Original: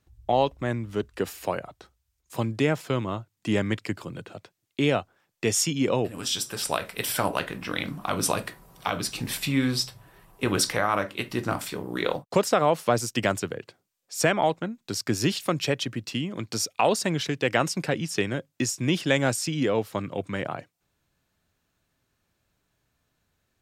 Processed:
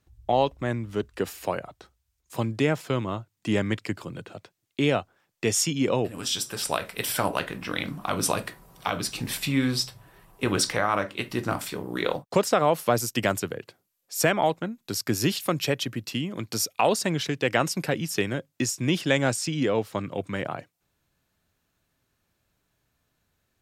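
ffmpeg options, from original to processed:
-af "asetnsamples=n=441:p=0,asendcmd='10.54 equalizer g -6.5;11.23 equalizer g 1.5;12.66 equalizer g 11.5;16.94 equalizer g 4;17.71 equalizer g 12;18.33 equalizer g 3.5;19.08 equalizer g -4.5;20.07 equalizer g 4.5',equalizer=f=12k:t=o:w=0.32:g=0"

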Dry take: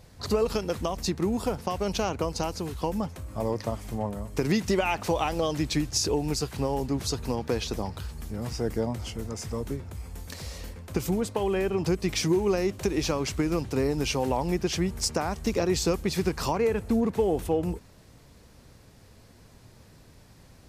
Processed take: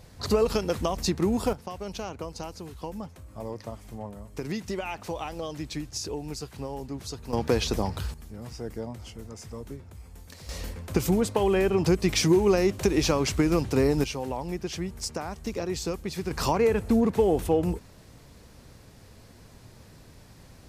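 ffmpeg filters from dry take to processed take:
-af "asetnsamples=n=441:p=0,asendcmd='1.53 volume volume -7.5dB;7.33 volume volume 4dB;8.14 volume volume -7dB;10.49 volume volume 3.5dB;14.04 volume volume -5.5dB;16.31 volume volume 2.5dB',volume=2dB"

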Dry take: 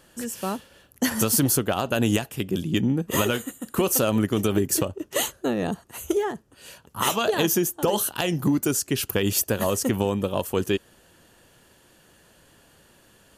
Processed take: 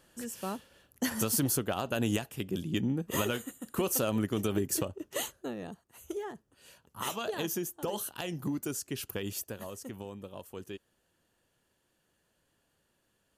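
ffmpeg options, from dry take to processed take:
-af "volume=-0.5dB,afade=t=out:st=4.98:d=0.86:silence=0.266073,afade=t=in:st=5.84:d=0.48:silence=0.421697,afade=t=out:st=9.09:d=0.6:silence=0.446684"

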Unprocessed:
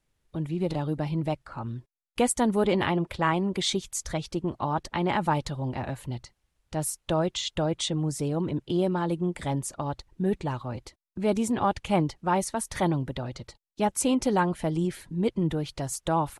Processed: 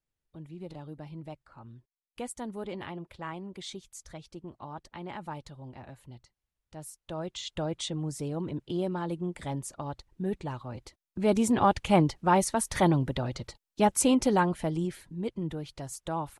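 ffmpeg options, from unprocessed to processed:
-af "volume=2dB,afade=t=in:st=7.03:d=0.57:silence=0.375837,afade=t=in:st=10.72:d=0.81:silence=0.421697,afade=t=out:st=13.91:d=1.26:silence=0.334965"

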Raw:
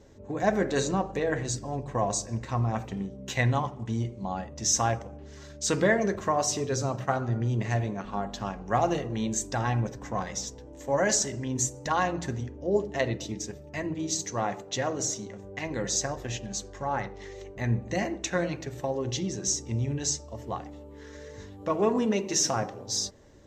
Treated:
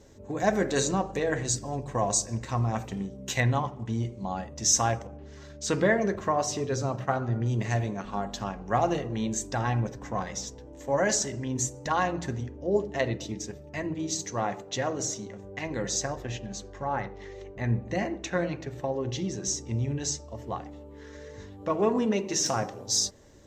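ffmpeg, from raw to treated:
-af "asetnsamples=n=441:p=0,asendcmd='3.4 equalizer g -3;4.03 equalizer g 3.5;5.07 equalizer g -6;7.46 equalizer g 5;8.44 equalizer g -2.5;16.22 equalizer g -9.5;19.19 equalizer g -3.5;22.46 equalizer g 6.5',equalizer=f=11k:t=o:w=1.9:g=7"

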